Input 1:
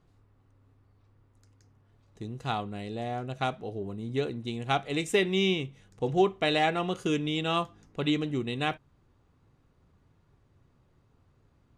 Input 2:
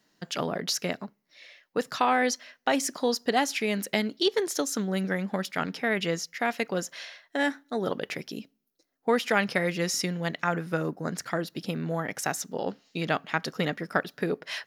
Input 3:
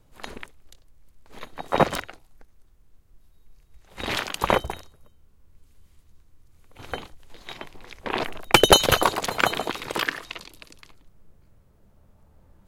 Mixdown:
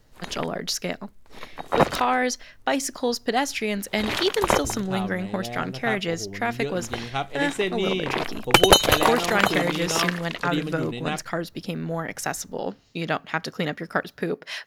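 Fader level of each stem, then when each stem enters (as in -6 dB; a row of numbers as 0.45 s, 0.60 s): -0.5 dB, +1.5 dB, 0.0 dB; 2.45 s, 0.00 s, 0.00 s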